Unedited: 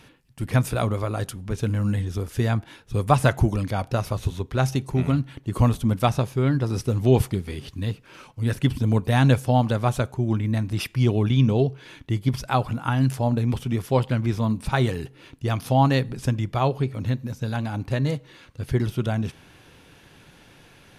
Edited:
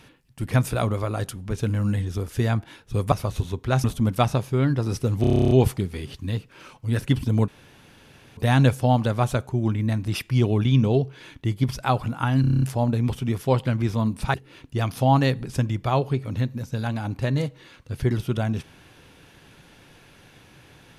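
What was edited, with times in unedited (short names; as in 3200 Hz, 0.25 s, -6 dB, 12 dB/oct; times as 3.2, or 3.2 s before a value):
3.12–3.99 cut
4.71–5.68 cut
7.05 stutter 0.03 s, 11 plays
9.02 insert room tone 0.89 s
13.06 stutter 0.03 s, 8 plays
14.78–15.03 cut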